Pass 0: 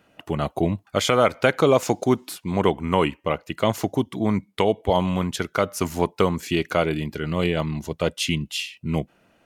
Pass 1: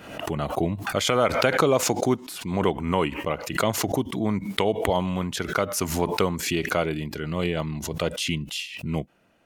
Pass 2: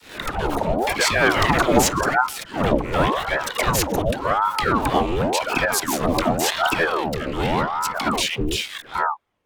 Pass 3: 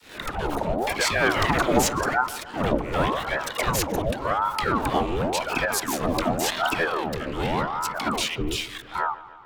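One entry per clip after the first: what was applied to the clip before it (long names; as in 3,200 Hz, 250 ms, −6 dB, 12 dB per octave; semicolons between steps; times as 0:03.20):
background raised ahead of every attack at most 65 dB per second; level −3.5 dB
leveller curve on the samples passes 3; all-pass dispersion lows, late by 134 ms, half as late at 420 Hz; ring modulator whose carrier an LFO sweeps 640 Hz, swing 80%, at 0.89 Hz; level −2.5 dB
delay with a low-pass on its return 146 ms, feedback 64%, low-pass 2,300 Hz, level −17 dB; level −4 dB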